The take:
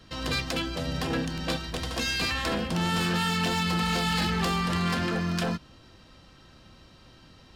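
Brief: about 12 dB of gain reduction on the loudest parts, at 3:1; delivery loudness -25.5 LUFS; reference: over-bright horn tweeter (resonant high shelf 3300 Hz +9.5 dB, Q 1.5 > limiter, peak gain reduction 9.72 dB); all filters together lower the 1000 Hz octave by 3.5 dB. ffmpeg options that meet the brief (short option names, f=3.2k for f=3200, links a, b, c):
-af "equalizer=f=1k:t=o:g=-3.5,acompressor=threshold=-41dB:ratio=3,highshelf=f=3.3k:t=q:w=1.5:g=9.5,volume=11dB,alimiter=limit=-16dB:level=0:latency=1"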